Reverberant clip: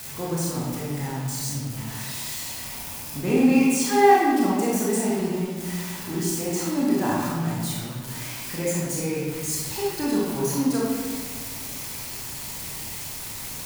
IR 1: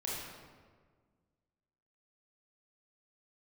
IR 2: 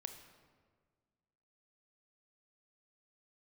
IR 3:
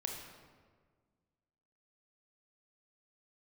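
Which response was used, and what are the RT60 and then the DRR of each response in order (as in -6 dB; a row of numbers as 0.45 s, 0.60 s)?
1; 1.6 s, 1.6 s, 1.6 s; -6.0 dB, 7.0 dB, 1.0 dB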